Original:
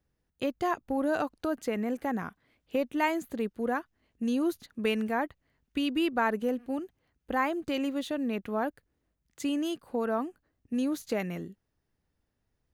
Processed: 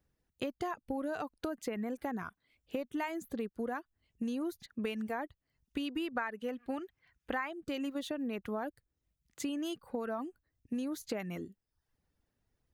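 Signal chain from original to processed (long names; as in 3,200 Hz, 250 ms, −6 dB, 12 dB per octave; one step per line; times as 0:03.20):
reverb reduction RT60 0.56 s
0:06.15–0:07.53: parametric band 1,900 Hz +11.5 dB 2.3 octaves
downward compressor 8 to 1, threshold −33 dBFS, peak gain reduction 18.5 dB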